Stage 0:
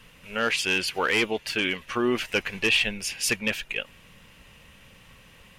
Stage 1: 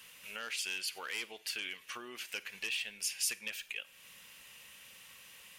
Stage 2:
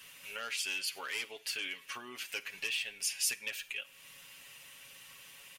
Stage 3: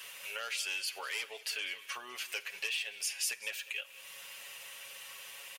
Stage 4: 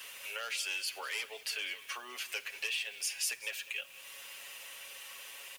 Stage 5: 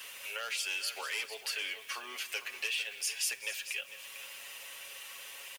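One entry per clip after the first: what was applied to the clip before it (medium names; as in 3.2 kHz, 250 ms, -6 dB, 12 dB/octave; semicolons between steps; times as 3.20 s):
on a send at -19 dB: reverberation RT60 0.35 s, pre-delay 35 ms; on the sum: compression 2.5:1, threshold -40 dBFS, peak gain reduction 14.5 dB; tilt EQ +4 dB/octave; trim -7 dB
comb 7.2 ms
resonant low shelf 370 Hz -9.5 dB, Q 1.5; delay 196 ms -19.5 dB; three bands compressed up and down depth 40%
steep high-pass 220 Hz 96 dB/octave; added noise white -63 dBFS
delay 450 ms -12 dB; trim +1 dB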